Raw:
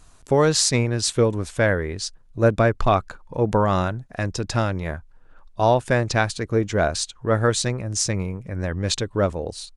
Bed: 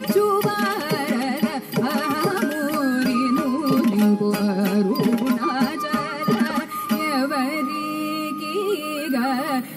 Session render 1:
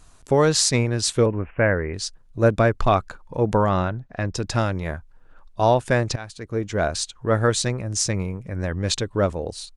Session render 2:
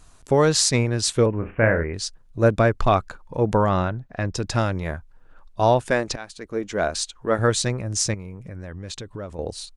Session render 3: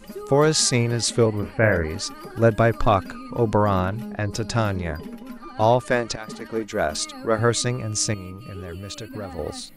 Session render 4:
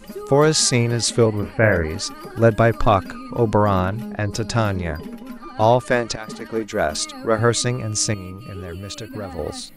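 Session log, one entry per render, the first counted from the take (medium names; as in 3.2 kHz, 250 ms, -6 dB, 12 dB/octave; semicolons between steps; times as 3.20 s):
1.26–1.94 s: steep low-pass 2.8 kHz 96 dB/octave; 3.69–4.34 s: distance through air 150 m; 6.16–7.33 s: fade in equal-power, from -19.5 dB
1.38–1.84 s: flutter echo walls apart 6.1 m, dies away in 0.28 s; 5.86–7.39 s: peaking EQ 110 Hz -14 dB; 8.14–9.39 s: compression 4:1, threshold -32 dBFS
add bed -17.5 dB
trim +2.5 dB; peak limiter -1 dBFS, peak gain reduction 1 dB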